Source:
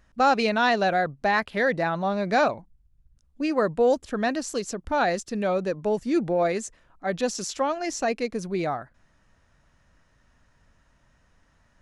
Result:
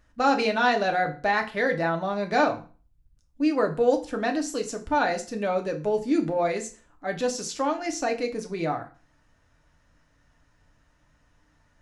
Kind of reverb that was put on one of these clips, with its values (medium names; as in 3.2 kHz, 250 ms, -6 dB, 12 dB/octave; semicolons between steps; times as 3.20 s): FDN reverb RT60 0.37 s, low-frequency decay 1.1×, high-frequency decay 0.9×, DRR 3 dB; trim -2.5 dB